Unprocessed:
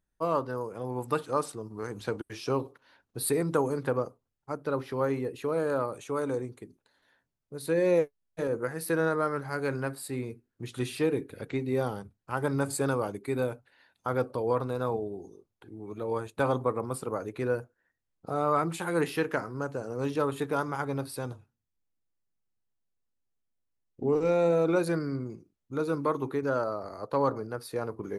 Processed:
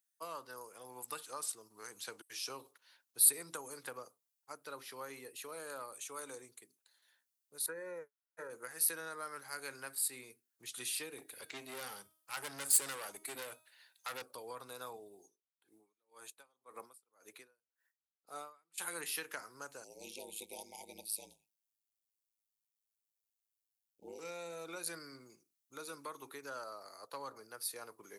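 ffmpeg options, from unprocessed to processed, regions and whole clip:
ffmpeg -i in.wav -filter_complex "[0:a]asettb=1/sr,asplit=3[link_01][link_02][link_03];[link_01]atrim=end=7.664[link_04];[link_02]atrim=start=7.66:end=8.5,asetpts=PTS-STARTPTS,afade=type=in:duration=0.004:curve=qsin,afade=type=out:start_time=0.836:duration=0.004:curve=qsin,highshelf=frequency=2200:width_type=q:width=3:gain=-13.5,aecho=1:1:2.1:0.48,atrim=end_sample=37044[link_05];[link_03]atrim=start=8.496[link_06];[link_04][link_05]acrossfade=duration=0.004:curve1=hsin:curve2=qsin[link_07];[link_07][link_06]acrossfade=duration=0.004:curve1=qsin:curve2=hsin,asettb=1/sr,asplit=3[link_08][link_09][link_10];[link_08]atrim=end=11.184[link_11];[link_09]atrim=start=11.18:end=14.22,asetpts=PTS-STARTPTS,afade=type=in:duration=0.004:curve=qsin,afade=type=out:start_time=3.036:duration=0.004:curve=qsin,bandreject=frequency=316.6:width_type=h:width=4,bandreject=frequency=633.2:width_type=h:width=4,bandreject=frequency=949.8:width_type=h:width=4,bandreject=frequency=1266.4:width_type=h:width=4,bandreject=frequency=1583:width_type=h:width=4,bandreject=frequency=1899.6:width_type=h:width=4,bandreject=frequency=2216.2:width_type=h:width=4,bandreject=frequency=2532.8:width_type=h:width=4,bandreject=frequency=2849.4:width_type=h:width=4,bandreject=frequency=3166:width_type=h:width=4,bandreject=frequency=3482.6:width_type=h:width=4,bandreject=frequency=3799.2:width_type=h:width=4,bandreject=frequency=4115.8:width_type=h:width=4,bandreject=frequency=4432.4:width_type=h:width=4,bandreject=frequency=4749:width_type=h:width=4,bandreject=frequency=5065.6:width_type=h:width=4,bandreject=frequency=5382.2:width_type=h:width=4,bandreject=frequency=5698.8:width_type=h:width=4,bandreject=frequency=6015.4:width_type=h:width=4,bandreject=frequency=6332:width_type=h:width=4,bandreject=frequency=6648.6:width_type=h:width=4,bandreject=frequency=6965.2:width_type=h:width=4,bandreject=frequency=7281.8:width_type=h:width=4,bandreject=frequency=7598.4:width_type=h:width=4,bandreject=frequency=7915:width_type=h:width=4,bandreject=frequency=8231.6:width_type=h:width=4,bandreject=frequency=8548.2:width_type=h:width=4,bandreject=frequency=8864.8:width_type=h:width=4,bandreject=frequency=9181.4:width_type=h:width=4,bandreject=frequency=9498:width_type=h:width=4,bandreject=frequency=9814.6:width_type=h:width=4,bandreject=frequency=10131.2:width_type=h:width=4,bandreject=frequency=10447.8:width_type=h:width=4,bandreject=frequency=10764.4:width_type=h:width=4,bandreject=frequency=11081:width_type=h:width=4,bandreject=frequency=11397.6:width_type=h:width=4,bandreject=frequency=11714.2:width_type=h:width=4,bandreject=frequency=12030.8:width_type=h:width=4,acontrast=48,aeval=exprs='(tanh(17.8*val(0)+0.55)-tanh(0.55))/17.8':channel_layout=same[link_12];[link_10]atrim=start=14.216[link_13];[link_11][link_12]acrossfade=duration=0.004:curve1=hsin:curve2=qsin[link_14];[link_14][link_13]acrossfade=duration=0.004:curve1=qsin:curve2=hsin,asettb=1/sr,asplit=3[link_15][link_16][link_17];[link_15]atrim=end=15.224[link_18];[link_16]atrim=start=15.22:end=18.78,asetpts=PTS-STARTPTS,afade=type=in:duration=0.004:curve=qsin,afade=type=out:start_time=3.556:duration=0.004:curve=qsin,highpass=150,aeval=exprs='val(0)*pow(10,-38*(0.5-0.5*cos(2*PI*1.9*n/s))/20)':channel_layout=same[link_19];[link_17]atrim=start=18.776[link_20];[link_18][link_19]acrossfade=duration=0.004:curve1=hsin:curve2=qsin[link_21];[link_21][link_20]acrossfade=duration=0.004:curve1=qsin:curve2=hsin,asettb=1/sr,asplit=3[link_22][link_23][link_24];[link_22]atrim=end=19.844[link_25];[link_23]atrim=start=19.84:end=24.19,asetpts=PTS-STARTPTS,afade=type=in:duration=0.004:curve=qsin,afade=type=out:start_time=4.346:duration=0.004:curve=qsin,asuperstop=centerf=1400:order=20:qfactor=1.1,aeval=exprs='val(0)*sin(2*PI*53*n/s)':channel_layout=same[link_26];[link_24]atrim=start=24.186[link_27];[link_25][link_26]acrossfade=duration=0.004:curve1=hsin:curve2=qsin[link_28];[link_28][link_27]acrossfade=duration=0.004:curve1=qsin:curve2=hsin,acrossover=split=210[link_29][link_30];[link_30]acompressor=threshold=-27dB:ratio=6[link_31];[link_29][link_31]amix=inputs=2:normalize=0,aderivative,volume=5.5dB" out.wav

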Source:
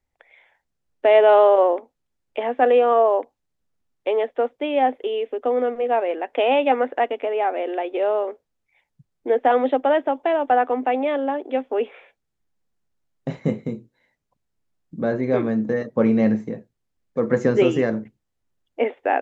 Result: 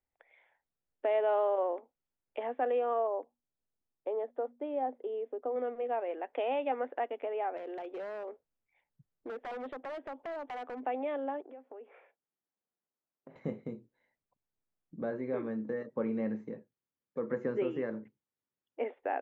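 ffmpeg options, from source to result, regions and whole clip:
ffmpeg -i in.wav -filter_complex "[0:a]asettb=1/sr,asplit=3[link_01][link_02][link_03];[link_01]atrim=end=3.074[link_04];[link_02]atrim=start=3.07:end=5.56,asetpts=PTS-STARTPTS,afade=type=in:duration=0.004:curve=qsin,afade=type=out:start_time=2.486:duration=0.004:curve=qsin,equalizer=frequency=2700:width=0.9:gain=-13.5,bandreject=frequency=60:width_type=h:width=6,bandreject=frequency=120:width_type=h:width=6,bandreject=frequency=180:width_type=h:width=6,bandreject=frequency=240:width_type=h:width=6[link_05];[link_03]atrim=start=5.556[link_06];[link_04][link_05]acrossfade=duration=0.004:curve1=hsin:curve2=qsin[link_07];[link_07][link_06]acrossfade=duration=0.004:curve1=qsin:curve2=hsin,asettb=1/sr,asplit=3[link_08][link_09][link_10];[link_08]atrim=end=7.574[link_11];[link_09]atrim=start=7.57:end=10.84,asetpts=PTS-STARTPTS,afade=type=in:duration=0.004:curve=qsin,afade=type=out:start_time=3.266:duration=0.004:curve=qsin,lowshelf=frequency=200:gain=4.5,acompressor=threshold=-29dB:ratio=2.5:attack=3.2:release=140:knee=1:detection=peak,aeval=exprs='0.0562*(abs(mod(val(0)/0.0562+3,4)-2)-1)':channel_layout=same[link_12];[link_10]atrim=start=10.836[link_13];[link_11][link_12]acrossfade=duration=0.004:curve1=hsin:curve2=qsin[link_14];[link_14][link_13]acrossfade=duration=0.004:curve1=qsin:curve2=hsin,asettb=1/sr,asplit=3[link_15][link_16][link_17];[link_15]atrim=end=11.414[link_18];[link_16]atrim=start=11.41:end=13.36,asetpts=PTS-STARTPTS,afade=type=in:duration=0.004:curve=qsin,afade=type=out:start_time=1.946:duration=0.004:curve=qsin,acompressor=threshold=-36dB:ratio=8:attack=3.2:release=140:knee=1:detection=peak,highpass=210,lowpass=2000[link_19];[link_17]atrim=start=13.356[link_20];[link_18][link_19]acrossfade=duration=0.004:curve1=hsin:curve2=qsin[link_21];[link_21][link_20]acrossfade=duration=0.004:curve1=qsin:curve2=hsin,asettb=1/sr,asplit=3[link_22][link_23][link_24];[link_22]atrim=end=15.104[link_25];[link_23]atrim=start=15.1:end=18.81,asetpts=PTS-STARTPTS,afade=type=in:duration=0.004:curve=qsin,afade=type=out:start_time=3.706:duration=0.004:curve=qsin,acrossover=split=3300[link_26][link_27];[link_27]acompressor=threshold=-56dB:ratio=4:attack=1:release=60[link_28];[link_26][link_28]amix=inputs=2:normalize=0,highpass=110,equalizer=frequency=700:width=7:gain=-9.5[link_29];[link_24]atrim=start=18.806[link_30];[link_25][link_29]acrossfade=duration=0.004:curve1=hsin:curve2=qsin[link_31];[link_31][link_30]acrossfade=duration=0.004:curve1=qsin:curve2=hsin,lowpass=frequency=1500:poles=1,lowshelf=frequency=250:gain=-8.5,acompressor=threshold=-30dB:ratio=1.5,volume=-7dB" out.wav

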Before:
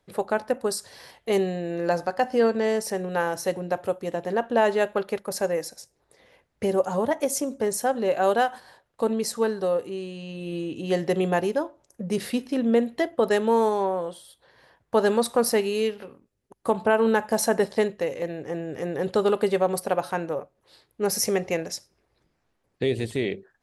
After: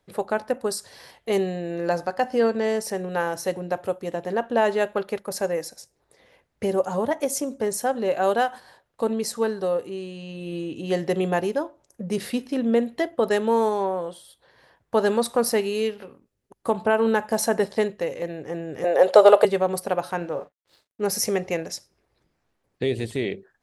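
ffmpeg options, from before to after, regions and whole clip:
ffmpeg -i in.wav -filter_complex "[0:a]asettb=1/sr,asplit=3[link_01][link_02][link_03];[link_01]atrim=end=18.844[link_04];[link_02]atrim=start=18.84:end=19.45,asetpts=PTS-STARTPTS,afade=type=in:duration=0.004:curve=qsin,afade=type=out:start_time=0.606:duration=0.004:curve=qsin,acontrast=70,highpass=frequency=610:width_type=q:width=3.8[link_05];[link_03]atrim=start=19.446[link_06];[link_04][link_05]acrossfade=duration=0.004:curve1=hsin:curve2=qsin[link_07];[link_07][link_06]acrossfade=duration=0.004:curve1=qsin:curve2=hsin,asettb=1/sr,asplit=3[link_08][link_09][link_10];[link_08]atrim=end=20.174[link_11];[link_09]atrim=start=20.17:end=21.01,asetpts=PTS-STARTPTS,afade=type=in:duration=0.004:curve=qsin,afade=type=out:start_time=0.836:duration=0.004:curve=qsin,lowpass=6100,aeval=exprs='sgn(val(0))*max(abs(val(0))-0.00112,0)':channel_layout=same,asplit=2[link_12][link_13];[link_13]adelay=40,volume=-11dB[link_14];[link_12][link_14]amix=inputs=2:normalize=0,atrim=end_sample=37044[link_15];[link_10]atrim=start=21.006[link_16];[link_11][link_15]acrossfade=duration=0.004:curve1=hsin:curve2=qsin[link_17];[link_17][link_16]acrossfade=duration=0.004:curve1=qsin:curve2=hsin" out.wav

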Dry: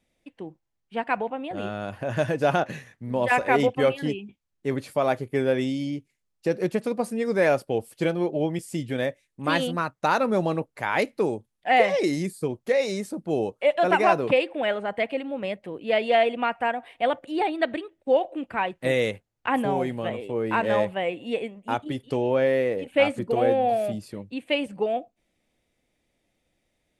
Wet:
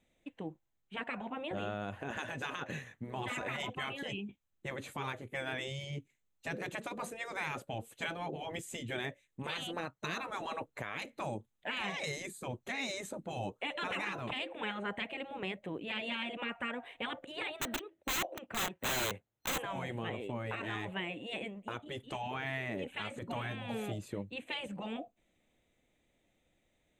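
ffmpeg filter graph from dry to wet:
ffmpeg -i in.wav -filter_complex "[0:a]asettb=1/sr,asplit=3[link_01][link_02][link_03];[link_01]atrim=end=17.604[link_04];[link_02]atrim=start=17.6:end=19.58,asetpts=PTS-STARTPTS,afade=type=in:duration=0.004:curve=qsin,afade=type=out:start_time=1.976:duration=0.004:curve=qsin,highpass=frequency=100:poles=1,highshelf=frequency=2600:gain=-4.5,aeval=exprs='(mod(16.8*val(0)+1,2)-1)/16.8':channel_layout=same[link_05];[link_03]atrim=start=19.576[link_06];[link_04][link_05]acrossfade=duration=0.004:curve1=hsin:curve2=qsin[link_07];[link_07][link_06]acrossfade=duration=0.004:curve1=qsin:curve2=hsin,afftfilt=real='re*lt(hypot(re,im),0.178)':imag='im*lt(hypot(re,im),0.178)':win_size=1024:overlap=0.75,superequalizer=14b=0.282:16b=0.447,alimiter=level_in=1dB:limit=-24dB:level=0:latency=1:release=282,volume=-1dB,volume=-1.5dB" out.wav

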